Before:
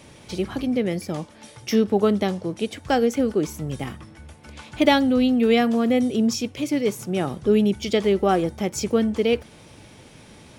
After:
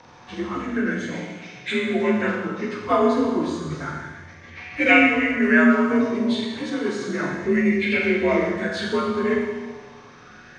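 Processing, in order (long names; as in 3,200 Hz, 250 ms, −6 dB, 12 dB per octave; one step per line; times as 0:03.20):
partials spread apart or drawn together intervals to 86%
four-comb reverb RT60 1.4 s, combs from 26 ms, DRR −0.5 dB
auto-filter bell 0.31 Hz 980–2,300 Hz +16 dB
level −3.5 dB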